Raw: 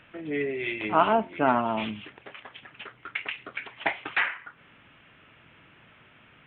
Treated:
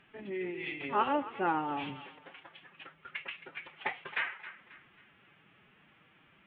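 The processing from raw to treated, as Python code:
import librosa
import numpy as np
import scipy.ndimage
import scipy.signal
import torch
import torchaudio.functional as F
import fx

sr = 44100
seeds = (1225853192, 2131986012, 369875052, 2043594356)

y = fx.echo_thinned(x, sr, ms=269, feedback_pct=43, hz=560.0, wet_db=-14.5)
y = fx.pitch_keep_formants(y, sr, semitones=4.5)
y = y * librosa.db_to_amplitude(-7.5)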